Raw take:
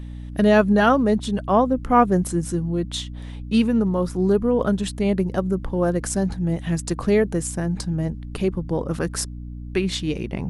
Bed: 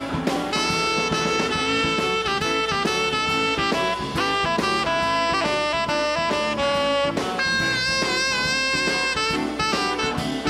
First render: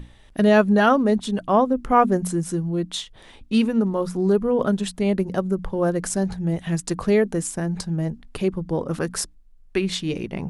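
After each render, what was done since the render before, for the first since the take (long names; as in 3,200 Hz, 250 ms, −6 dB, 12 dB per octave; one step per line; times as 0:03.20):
mains-hum notches 60/120/180/240/300 Hz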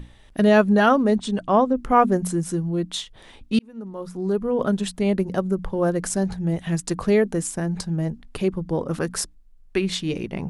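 0:01.15–0:01.77: linear-phase brick-wall low-pass 9,600 Hz
0:03.59–0:04.79: fade in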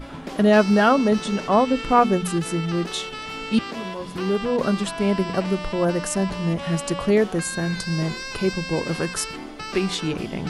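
mix in bed −11 dB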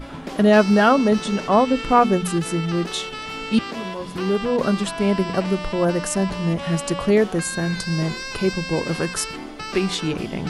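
level +1.5 dB
brickwall limiter −3 dBFS, peak gain reduction 1 dB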